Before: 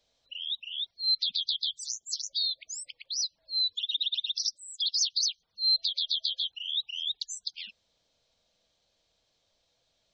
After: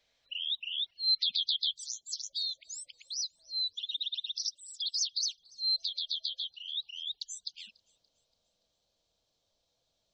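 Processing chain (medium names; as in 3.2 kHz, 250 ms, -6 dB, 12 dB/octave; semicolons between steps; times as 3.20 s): peaking EQ 2 kHz +11 dB 1.1 oct, from 1.74 s -7 dB; feedback echo behind a high-pass 287 ms, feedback 45%, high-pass 5.2 kHz, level -22.5 dB; trim -3.5 dB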